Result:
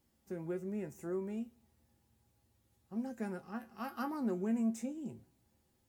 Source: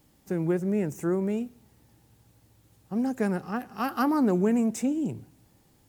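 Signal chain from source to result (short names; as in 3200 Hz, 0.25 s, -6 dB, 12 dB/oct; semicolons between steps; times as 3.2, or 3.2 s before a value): resonator 75 Hz, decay 0.18 s, harmonics odd, mix 80%; gain -5.5 dB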